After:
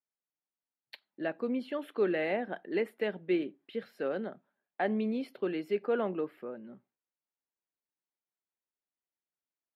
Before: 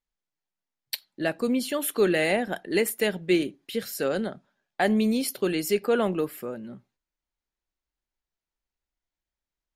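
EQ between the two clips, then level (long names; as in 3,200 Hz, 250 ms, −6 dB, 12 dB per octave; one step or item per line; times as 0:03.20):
high-pass filter 230 Hz 12 dB per octave
high-frequency loss of the air 450 metres
−5.0 dB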